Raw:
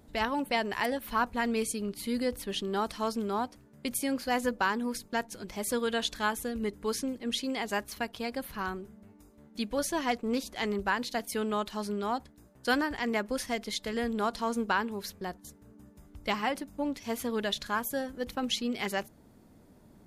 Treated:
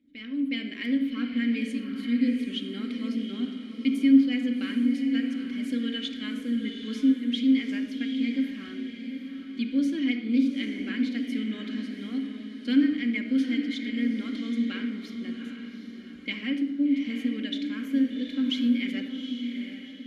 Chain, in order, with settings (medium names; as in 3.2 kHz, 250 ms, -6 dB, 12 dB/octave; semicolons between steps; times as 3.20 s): vowel filter i; de-hum 51.28 Hz, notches 30; level rider gain up to 10 dB; echo that smears into a reverb 782 ms, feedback 41%, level -7.5 dB; simulated room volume 4000 m³, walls furnished, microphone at 2.2 m